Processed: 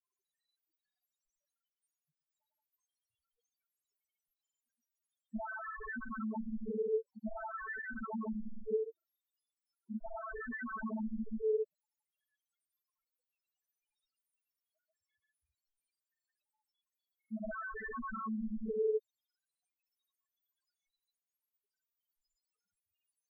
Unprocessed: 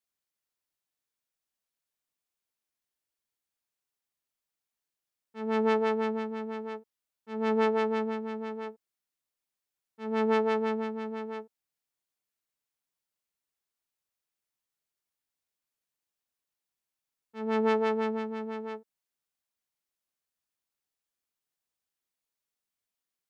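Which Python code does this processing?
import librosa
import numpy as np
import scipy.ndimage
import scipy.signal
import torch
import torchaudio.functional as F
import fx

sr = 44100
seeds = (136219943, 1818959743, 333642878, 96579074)

y = x + 10.0 ** (-7.0 / 20.0) * np.pad(x, (int(131 * sr / 1000.0), 0))[:len(x)]
y = fx.noise_reduce_blind(y, sr, reduce_db=7)
y = fx.fold_sine(y, sr, drive_db=20, ceiling_db=-15.5)
y = fx.over_compress(y, sr, threshold_db=-27.0, ratio=-1.0)
y = fx.spec_topn(y, sr, count=1)
y = fx.granulator(y, sr, seeds[0], grain_ms=100.0, per_s=20.0, spray_ms=100.0, spread_st=0)
y = F.gain(torch.from_numpy(y), -1.0).numpy()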